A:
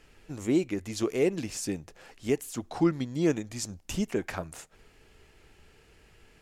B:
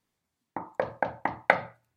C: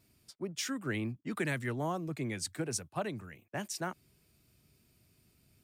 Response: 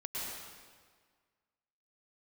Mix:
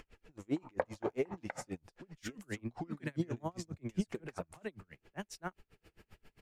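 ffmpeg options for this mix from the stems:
-filter_complex "[0:a]flanger=delay=0.9:depth=5.3:regen=61:speed=1.1:shape=sinusoidal,volume=1dB[a];[1:a]volume=-4dB[b];[2:a]adelay=1600,volume=0dB[c];[a][b][c]amix=inputs=3:normalize=0,acompressor=mode=upward:threshold=-46dB:ratio=2.5,highshelf=f=4.4k:g=-9,aeval=exprs='val(0)*pow(10,-34*(0.5-0.5*cos(2*PI*7.5*n/s))/20)':c=same"

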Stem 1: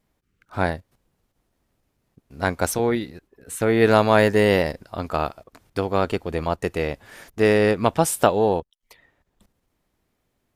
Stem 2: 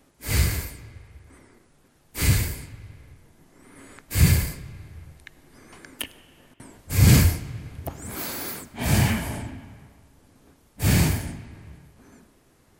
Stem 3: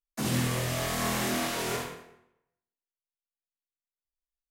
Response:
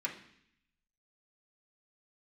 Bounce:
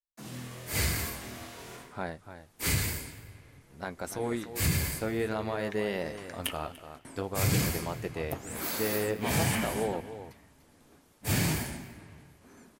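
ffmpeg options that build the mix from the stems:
-filter_complex "[0:a]alimiter=limit=-10.5dB:level=0:latency=1:release=210,adelay=1400,volume=-6.5dB,asplit=2[a][b];[b]volume=-11.5dB[c];[1:a]lowshelf=f=120:g=-10.5,acompressor=threshold=-22dB:ratio=6,adelay=450,volume=2.5dB,asplit=2[d][e];[e]volume=-20.5dB[f];[2:a]volume=-10dB[g];[c][f]amix=inputs=2:normalize=0,aecho=0:1:293:1[h];[a][d][g][h]amix=inputs=4:normalize=0,flanger=delay=5:depth=8.1:regen=-59:speed=0.51:shape=sinusoidal"

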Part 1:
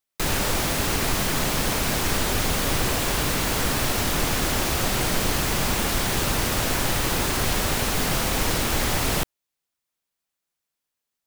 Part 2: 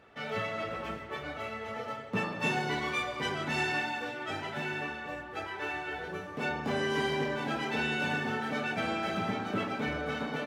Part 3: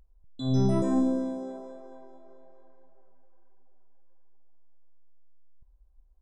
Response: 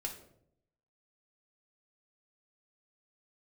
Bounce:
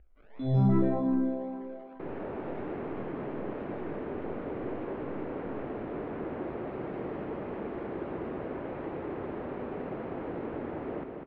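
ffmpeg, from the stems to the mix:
-filter_complex "[0:a]bandpass=f=380:t=q:w=1.5:csg=0,adelay=1800,volume=-5.5dB,asplit=2[a][b];[b]volume=-4.5dB[c];[1:a]acrusher=samples=40:mix=1:aa=0.000001:lfo=1:lforange=24:lforate=1.8,highpass=f=680:p=1,volume=-19dB,asplit=2[d][e];[e]volume=-4.5dB[f];[2:a]asplit=2[g][h];[h]afreqshift=2.3[i];[g][i]amix=inputs=2:normalize=1,volume=2.5dB,asplit=2[j][k];[k]volume=-13dB[l];[c][f][l]amix=inputs=3:normalize=0,aecho=0:1:199|398|597|796|995:1|0.36|0.13|0.0467|0.0168[m];[a][d][j][m]amix=inputs=4:normalize=0,lowpass=f=2.5k:w=0.5412,lowpass=f=2.5k:w=1.3066"

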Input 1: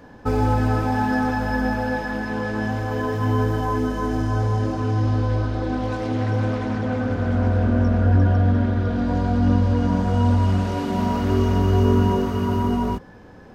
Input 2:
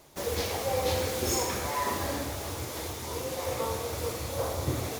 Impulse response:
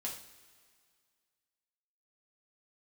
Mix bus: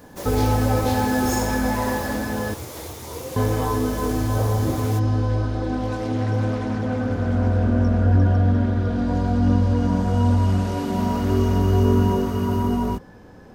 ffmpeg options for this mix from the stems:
-filter_complex "[0:a]highshelf=f=5k:g=7,volume=0dB,asplit=3[a][b][c];[a]atrim=end=2.54,asetpts=PTS-STARTPTS,afade=t=out:st=2.536:d=0.004:c=hsin[d];[b]atrim=start=2.54:end=3.36,asetpts=PTS-STARTPTS,volume=0[e];[c]atrim=start=3.36,asetpts=PTS-STARTPTS,afade=t=in:d=0.004:c=hsin[f];[d][e][f]concat=n=3:v=0:a=1[g];[1:a]volume=2.5dB[h];[g][h]amix=inputs=2:normalize=0,equalizer=f=2.8k:t=o:w=3:g=-3.5"

